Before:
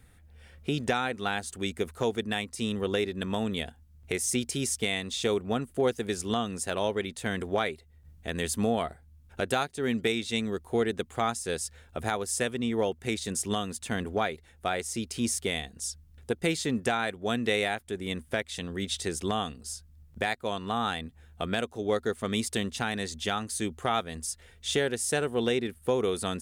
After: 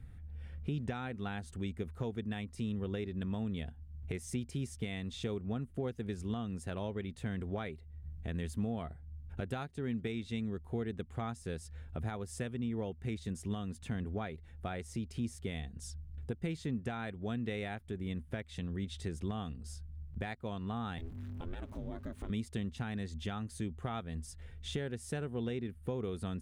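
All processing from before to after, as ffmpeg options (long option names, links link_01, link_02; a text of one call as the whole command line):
ffmpeg -i in.wav -filter_complex "[0:a]asettb=1/sr,asplit=3[link_01][link_02][link_03];[link_01]atrim=end=20.984[link_04];[link_02]atrim=start=20.98:end=22.3,asetpts=PTS-STARTPTS,afade=type=in:duration=0.004:curve=qsin,afade=type=out:start_time=1.316:duration=0.004:curve=qsin,aeval=exprs='val(0)+0.5*0.00841*sgn(val(0))':channel_layout=same,acompressor=threshold=-37dB:ratio=2:attack=3.2:release=140:knee=1:detection=peak,aeval=exprs='val(0)*sin(2*PI*170*n/s)':channel_layout=same[link_05];[link_03]atrim=start=22.296[link_06];[link_04][link_05]acrossfade=duration=0.004:curve1=hsin:curve2=qsin[link_07];[link_07][link_06]acrossfade=duration=0.004:curve1=qsin:curve2=hsin,bass=frequency=250:gain=14,treble=frequency=4000:gain=-9,acompressor=threshold=-36dB:ratio=2,volume=-5dB" out.wav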